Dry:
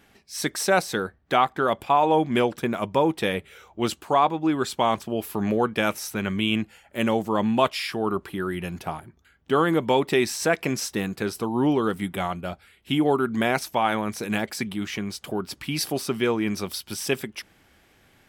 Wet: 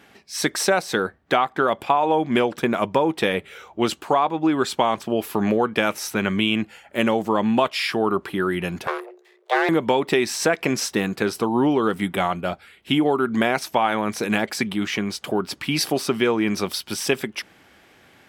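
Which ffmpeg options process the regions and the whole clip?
ffmpeg -i in.wav -filter_complex "[0:a]asettb=1/sr,asplit=3[link_01][link_02][link_03];[link_01]atrim=end=8.874[link_04];[link_02]atrim=start=8.87:end=9.69,asetpts=PTS-STARTPTS,afade=type=in:duration=0.004:curve=qsin,afade=type=out:start_time=0.816:duration=0.004:curve=qsin,aeval=exprs='max(val(0),0)':channel_layout=same,afreqshift=360[link_05];[link_03]atrim=start=9.686[link_06];[link_04][link_05]acrossfade=duration=0.004:curve1=hsin:curve2=qsin[link_07];[link_07][link_06]acrossfade=duration=0.004:curve1=qsin:curve2=hsin,highpass=frequency=200:poles=1,highshelf=frequency=6600:gain=-7.5,acompressor=threshold=-23dB:ratio=5,volume=7.5dB" out.wav

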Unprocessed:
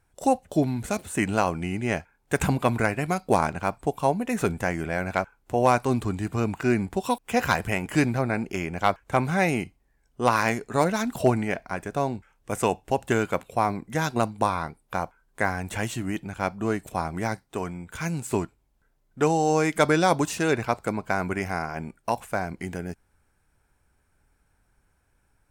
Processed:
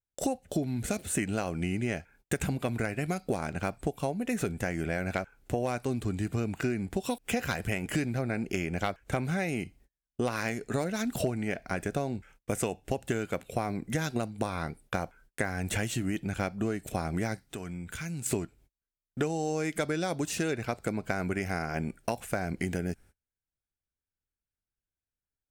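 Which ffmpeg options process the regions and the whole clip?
ffmpeg -i in.wav -filter_complex "[0:a]asettb=1/sr,asplit=3[link_01][link_02][link_03];[link_01]atrim=end=17.414[link_04];[link_02]atrim=start=17.41:end=18.26,asetpts=PTS-STARTPTS,afade=type=in:duration=0.004:curve=qsin,afade=type=out:start_time=0.846:duration=0.004:curve=qsin,equalizer=frequency=510:width=0.95:gain=-5,acompressor=threshold=-41dB:ratio=4:attack=3.2:release=140:knee=1:detection=peak[link_05];[link_03]atrim=start=18.256[link_06];[link_04][link_05]acrossfade=duration=0.004:curve1=hsin:curve2=qsin[link_07];[link_07][link_06]acrossfade=duration=0.004:curve1=qsin:curve2=hsin,agate=range=-34dB:threshold=-55dB:ratio=16:detection=peak,equalizer=frequency=990:width_type=o:width=0.67:gain=-10.5,acompressor=threshold=-33dB:ratio=10,volume=6dB" out.wav

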